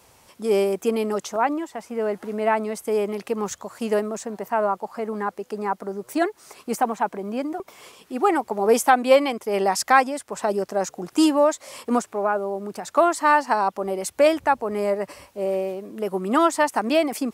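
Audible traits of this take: noise floor -58 dBFS; spectral tilt -4.0 dB/oct

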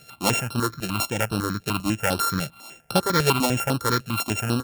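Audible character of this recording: a buzz of ramps at a fixed pitch in blocks of 32 samples; notches that jump at a steady rate 10 Hz 280–6900 Hz

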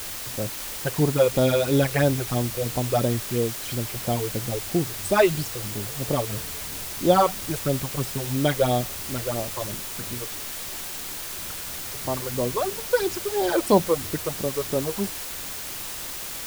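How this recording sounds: phasing stages 8, 3 Hz, lowest notch 210–2300 Hz; a quantiser's noise floor 6-bit, dither triangular

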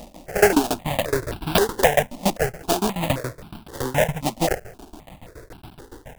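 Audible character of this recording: a quantiser's noise floor 8-bit, dither triangular; tremolo saw down 7.1 Hz, depth 95%; aliases and images of a low sample rate 1200 Hz, jitter 20%; notches that jump at a steady rate 3.8 Hz 420–1900 Hz

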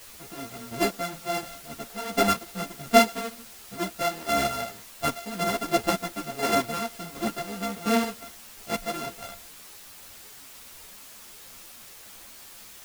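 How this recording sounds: a buzz of ramps at a fixed pitch in blocks of 64 samples; chopped level 1.4 Hz, depth 60%, duty 25%; a quantiser's noise floor 8-bit, dither triangular; a shimmering, thickened sound

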